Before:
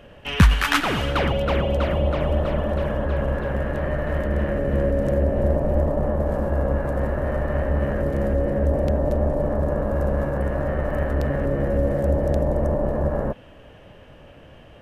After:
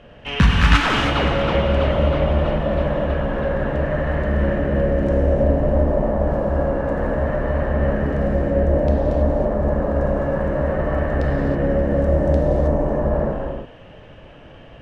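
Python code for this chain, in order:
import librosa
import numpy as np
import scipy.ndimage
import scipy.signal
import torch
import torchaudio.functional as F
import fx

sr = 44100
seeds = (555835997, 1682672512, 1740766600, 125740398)

p1 = scipy.signal.sosfilt(scipy.signal.butter(2, 5600.0, 'lowpass', fs=sr, output='sos'), x)
p2 = 10.0 ** (-14.5 / 20.0) * np.tanh(p1 / 10.0 ** (-14.5 / 20.0))
p3 = p1 + (p2 * 10.0 ** (-9.0 / 20.0))
p4 = fx.rev_gated(p3, sr, seeds[0], gate_ms=350, shape='flat', drr_db=-1.5)
y = p4 * 10.0 ** (-2.5 / 20.0)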